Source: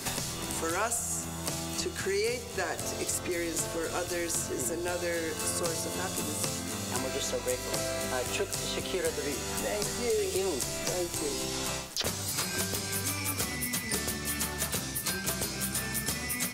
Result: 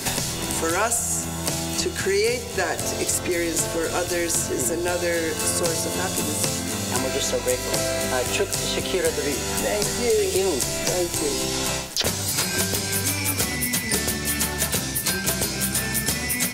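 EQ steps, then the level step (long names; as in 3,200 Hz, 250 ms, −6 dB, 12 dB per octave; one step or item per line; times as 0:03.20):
notch filter 1,200 Hz, Q 8
+8.5 dB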